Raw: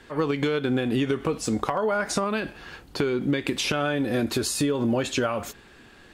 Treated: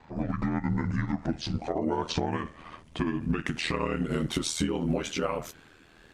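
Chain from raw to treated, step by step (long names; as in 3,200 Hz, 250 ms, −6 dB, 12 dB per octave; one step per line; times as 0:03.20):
pitch glide at a constant tempo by −11 semitones ending unshifted
ring modulation 40 Hz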